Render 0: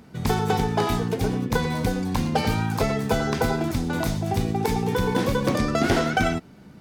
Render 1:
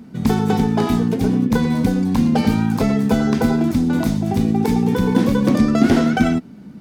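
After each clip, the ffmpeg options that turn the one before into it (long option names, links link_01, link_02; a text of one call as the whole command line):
ffmpeg -i in.wav -af "equalizer=frequency=230:width_type=o:width=0.91:gain=13" out.wav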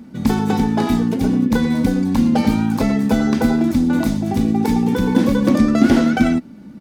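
ffmpeg -i in.wav -af "aecho=1:1:3.5:0.35" out.wav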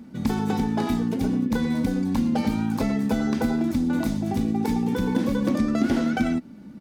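ffmpeg -i in.wav -af "acompressor=threshold=-17dB:ratio=2,volume=-4.5dB" out.wav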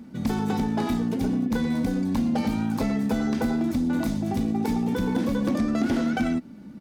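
ffmpeg -i in.wav -af "asoftclip=type=tanh:threshold=-15.5dB" out.wav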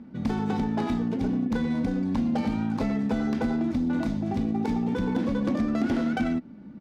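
ffmpeg -i in.wav -af "adynamicsmooth=sensitivity=6:basefreq=3100,volume=-1.5dB" out.wav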